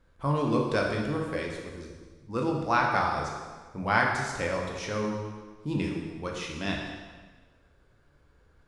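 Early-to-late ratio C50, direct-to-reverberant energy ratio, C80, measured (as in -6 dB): 2.5 dB, -0.5 dB, 4.0 dB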